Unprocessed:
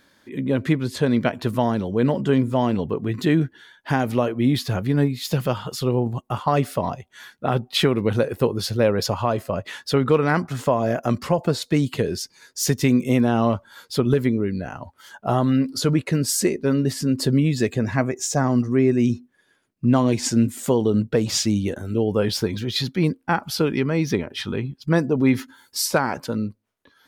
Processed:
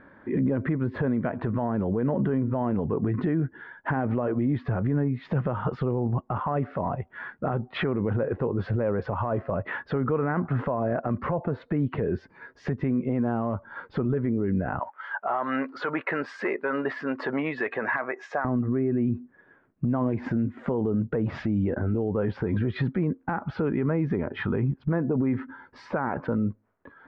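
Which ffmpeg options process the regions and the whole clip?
-filter_complex "[0:a]asettb=1/sr,asplit=3[a][b][c];[a]atrim=end=14.794[d];[b]atrim=start=14.79:end=18.45,asetpts=PTS-STARTPTS,afade=t=in:d=0.004:c=qsin,afade=t=out:st=3.656:d=0.004:c=qsin,acontrast=39,highpass=1k[e];[c]atrim=start=18.446[f];[d][e]acrossfade=d=0.004:c1=hsin:c2=qsin[g];[g][f]acrossfade=d=0.004:c1=qsin:c2=hsin,lowpass=f=1.7k:w=0.5412,lowpass=f=1.7k:w=1.3066,acompressor=threshold=-26dB:ratio=10,alimiter=level_in=2dB:limit=-24dB:level=0:latency=1:release=25,volume=-2dB,volume=8.5dB"

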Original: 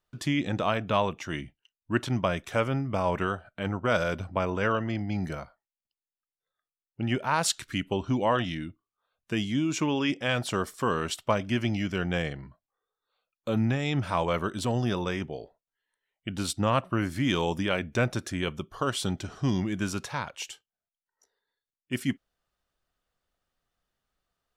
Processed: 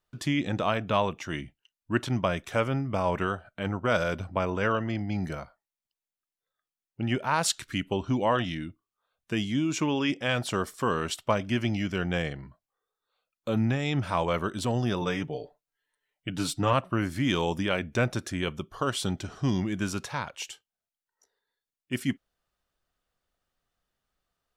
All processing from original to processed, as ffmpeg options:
-filter_complex "[0:a]asettb=1/sr,asplit=3[a][b][c];[a]atrim=end=15.014[d];[b]atrim=start=15.01:end=16.73,asetpts=PTS-STARTPTS,afade=t=in:d=0.004:c=qsin,afade=t=out:st=1.716:d=0.004:c=qsin,deesser=0.55,aecho=1:1:6.8:0.66,atrim=end_sample=75852[e];[c]atrim=start=16.726[f];[d][e]acrossfade=d=0.004:c1=hsin:c2=qsin[g];[g][f]acrossfade=d=0.004:c1=qsin:c2=hsin"

